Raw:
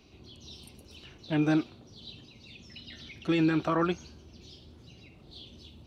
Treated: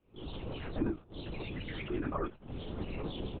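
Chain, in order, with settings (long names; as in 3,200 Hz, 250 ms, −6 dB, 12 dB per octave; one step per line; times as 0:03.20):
camcorder AGC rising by 38 dB per second
noise gate −40 dBFS, range −13 dB
low-pass filter 1,300 Hz 12 dB per octave
spectral tilt +2 dB per octave
comb filter 3.3 ms, depth 37%
reversed playback
downward compressor 6 to 1, threshold −31 dBFS, peak gain reduction 8 dB
reversed playback
phase-vocoder stretch with locked phases 0.58×
ambience of single reflections 20 ms −6.5 dB, 30 ms −14.5 dB
linear-prediction vocoder at 8 kHz whisper
every ending faded ahead of time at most 270 dB per second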